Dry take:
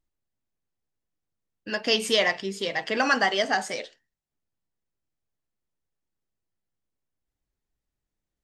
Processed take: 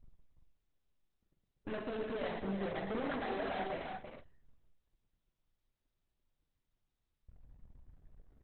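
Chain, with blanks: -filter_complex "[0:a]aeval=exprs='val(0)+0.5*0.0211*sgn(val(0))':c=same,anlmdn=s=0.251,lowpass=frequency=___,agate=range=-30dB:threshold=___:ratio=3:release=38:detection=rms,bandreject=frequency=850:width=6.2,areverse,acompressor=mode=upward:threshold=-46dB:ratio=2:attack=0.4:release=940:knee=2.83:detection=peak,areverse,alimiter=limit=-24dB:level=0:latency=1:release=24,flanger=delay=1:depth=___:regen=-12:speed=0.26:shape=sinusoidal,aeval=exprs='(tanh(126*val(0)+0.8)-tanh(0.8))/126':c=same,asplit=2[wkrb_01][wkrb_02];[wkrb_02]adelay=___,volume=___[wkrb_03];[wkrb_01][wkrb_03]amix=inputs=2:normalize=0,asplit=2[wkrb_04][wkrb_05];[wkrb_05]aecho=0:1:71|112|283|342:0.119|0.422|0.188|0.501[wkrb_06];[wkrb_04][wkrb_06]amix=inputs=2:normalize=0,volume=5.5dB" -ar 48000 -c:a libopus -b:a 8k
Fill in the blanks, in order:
1100, -35dB, 6.6, 46, -9.5dB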